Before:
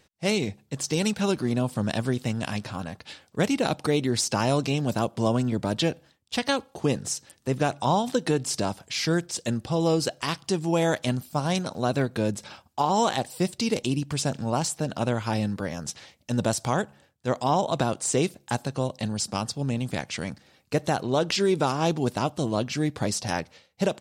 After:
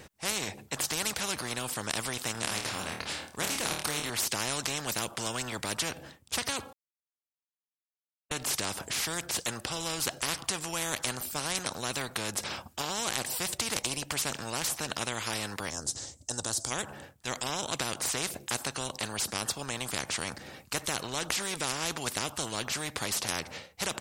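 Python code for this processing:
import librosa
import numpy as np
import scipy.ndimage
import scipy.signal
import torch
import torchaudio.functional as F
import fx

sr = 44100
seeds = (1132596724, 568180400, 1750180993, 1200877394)

y = fx.room_flutter(x, sr, wall_m=4.5, rt60_s=0.29, at=(2.32, 4.1))
y = fx.curve_eq(y, sr, hz=(110.0, 190.0, 270.0, 430.0, 860.0, 1600.0, 2400.0, 4500.0, 7700.0, 12000.0), db=(0, -14, -4, -9, -13, -15, -21, -3, 10, -13), at=(15.69, 16.7), fade=0.02)
y = fx.edit(y, sr, fx.silence(start_s=6.73, length_s=1.58), tone=tone)
y = fx.peak_eq(y, sr, hz=4200.0, db=-5.5, octaves=1.4)
y = fx.spectral_comp(y, sr, ratio=4.0)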